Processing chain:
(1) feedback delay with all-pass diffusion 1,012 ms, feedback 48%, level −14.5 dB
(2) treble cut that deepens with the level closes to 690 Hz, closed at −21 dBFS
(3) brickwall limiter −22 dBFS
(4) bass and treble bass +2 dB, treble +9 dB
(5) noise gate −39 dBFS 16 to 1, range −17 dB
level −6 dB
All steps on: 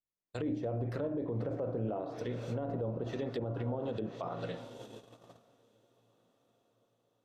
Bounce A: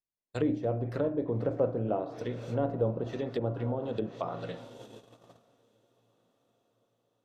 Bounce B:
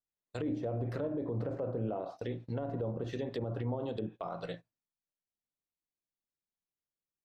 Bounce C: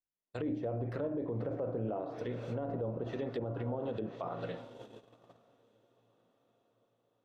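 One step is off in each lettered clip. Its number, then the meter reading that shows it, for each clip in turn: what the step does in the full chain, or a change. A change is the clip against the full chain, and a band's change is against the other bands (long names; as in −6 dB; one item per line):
3, average gain reduction 1.5 dB
1, change in momentary loudness spread −4 LU
4, 4 kHz band −3.0 dB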